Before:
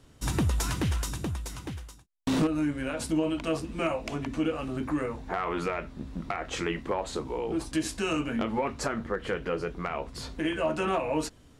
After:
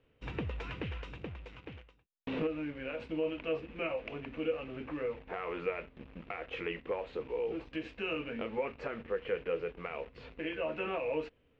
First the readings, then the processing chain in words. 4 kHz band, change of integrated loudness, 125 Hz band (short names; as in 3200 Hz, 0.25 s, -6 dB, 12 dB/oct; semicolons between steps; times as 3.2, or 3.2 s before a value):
-9.0 dB, -7.0 dB, -12.5 dB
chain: bell 480 Hz +12.5 dB 0.47 oct; in parallel at -6 dB: bit-crush 6-bit; on the sum: ladder low-pass 2900 Hz, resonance 60%; gain -5.5 dB